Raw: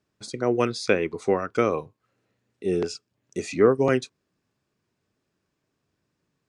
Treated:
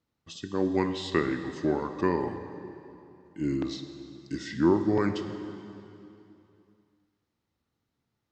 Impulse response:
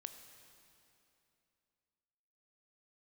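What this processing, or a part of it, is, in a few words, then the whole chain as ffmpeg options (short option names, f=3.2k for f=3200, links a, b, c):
slowed and reverbed: -filter_complex "[0:a]asetrate=34398,aresample=44100[a];[1:a]atrim=start_sample=2205[b];[a][b]afir=irnorm=-1:irlink=0"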